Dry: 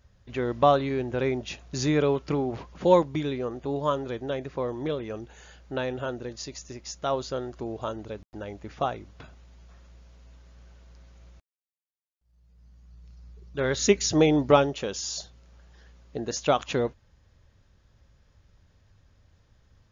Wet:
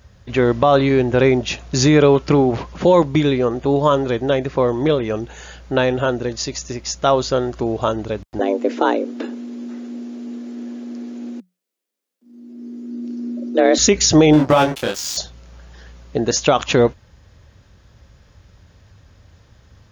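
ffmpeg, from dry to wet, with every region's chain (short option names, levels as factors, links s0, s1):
-filter_complex "[0:a]asettb=1/sr,asplit=3[s0][s1][s2];[s0]atrim=end=8.394[s3];[s1]atrim=start=8.39:end=13.78,asetpts=PTS-STARTPTS,afade=t=in:d=0.004:c=qsin,afade=t=out:st=5.386:d=0.004:c=qsin,lowshelf=f=460:t=q:w=1.5:g=7.5,afreqshift=180[s4];[s2]atrim=start=13.776[s5];[s3][s4]acrossfade=d=0.004:c1=hsin:c2=qsin[s6];[s6][s5]acrossfade=d=0.004:c1=qsin:c2=hsin,asettb=1/sr,asplit=3[s7][s8][s9];[s7]atrim=end=14.334[s10];[s8]atrim=start=14.33:end=15.17,asetpts=PTS-STARTPTS,afade=t=in:d=0.004:c=qsin,afade=t=out:st=0.836:d=0.004:c=qsin,aeval=exprs='sgn(val(0))*max(abs(val(0))-0.0178,0)':c=same,bandreject=f=430:w=7.1,asplit=2[s11][s12];[s12]adelay=26,volume=0.708[s13];[s11][s13]amix=inputs=2:normalize=0,atrim=end_sample=37044[s14];[s9]atrim=start=15.166[s15];[s10][s14]acrossfade=d=0.004:c1=hsin:c2=qsin[s16];[s16][s15]acrossfade=d=0.004:c1=qsin:c2=hsin,highpass=46,alimiter=level_in=6.31:limit=0.891:release=50:level=0:latency=1,volume=0.708"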